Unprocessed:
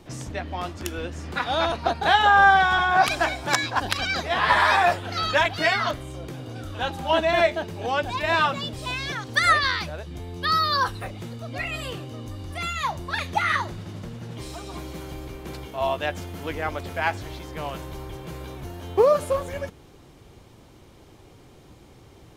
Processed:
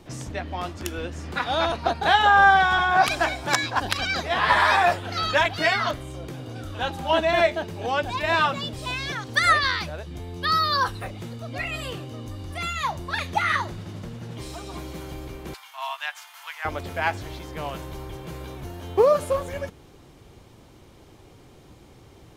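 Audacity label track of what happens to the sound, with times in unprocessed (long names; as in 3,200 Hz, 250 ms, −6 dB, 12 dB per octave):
15.540000	16.650000	Butterworth high-pass 900 Hz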